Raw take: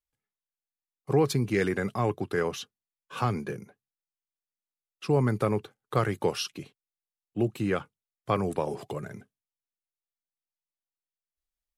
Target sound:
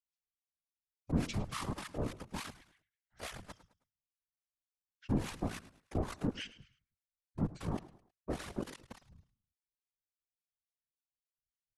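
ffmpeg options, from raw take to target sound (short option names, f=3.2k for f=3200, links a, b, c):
-filter_complex "[0:a]adynamicequalizer=threshold=0.00224:dfrequency=2000:dqfactor=4.6:tfrequency=2000:tqfactor=4.6:attack=5:release=100:ratio=0.375:range=3.5:mode=boostabove:tftype=bell,asplit=2[a][b];[b]adelay=150,highpass=300,lowpass=3.4k,asoftclip=type=hard:threshold=-20dB,volume=-16dB[c];[a][c]amix=inputs=2:normalize=0,aeval=exprs='(tanh(7.94*val(0)+0.55)-tanh(0.55))/7.94':c=same,acrossover=split=160|3200[d][e][f];[e]acrusher=bits=4:mix=0:aa=0.000001[g];[d][g][f]amix=inputs=3:normalize=0,acrossover=split=2000[h][i];[h]aeval=exprs='val(0)*(1-1/2+1/2*cos(2*PI*3.5*n/s))':c=same[j];[i]aeval=exprs='val(0)*(1-1/2-1/2*cos(2*PI*3.5*n/s))':c=same[k];[j][k]amix=inputs=2:normalize=0,asetrate=24046,aresample=44100,atempo=1.83401,asplit=2[l][m];[m]aecho=0:1:106|212|318:0.141|0.0523|0.0193[n];[l][n]amix=inputs=2:normalize=0,afftfilt=real='hypot(re,im)*cos(2*PI*random(0))':imag='hypot(re,im)*sin(2*PI*random(1))':win_size=512:overlap=0.75,volume=1dB"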